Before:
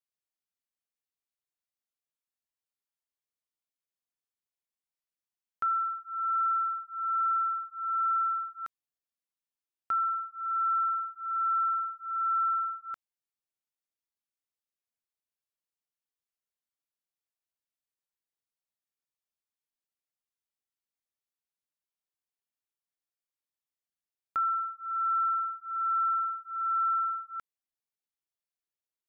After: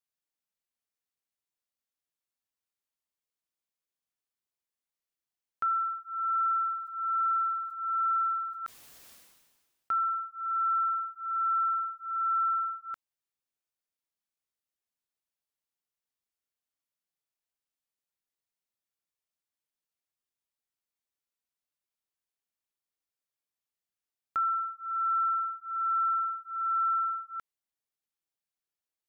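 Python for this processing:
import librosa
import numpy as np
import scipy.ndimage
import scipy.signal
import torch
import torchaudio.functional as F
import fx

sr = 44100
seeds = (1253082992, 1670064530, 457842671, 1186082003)

y = fx.sustainer(x, sr, db_per_s=40.0, at=(6.76, 9.98))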